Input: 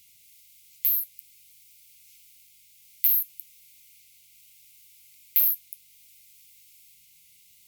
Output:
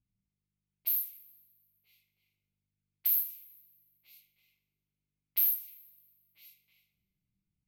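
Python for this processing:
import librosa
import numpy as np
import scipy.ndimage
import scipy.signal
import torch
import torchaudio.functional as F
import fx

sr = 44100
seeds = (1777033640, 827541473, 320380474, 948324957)

y = fx.echo_swing(x, sr, ms=1319, ratio=3, feedback_pct=39, wet_db=-8.5)
y = fx.env_lowpass(y, sr, base_hz=300.0, full_db=-22.5)
y = fx.rev_double_slope(y, sr, seeds[0], early_s=0.36, late_s=1.6, knee_db=-18, drr_db=4.0)
y = y * librosa.db_to_amplitude(-5.5)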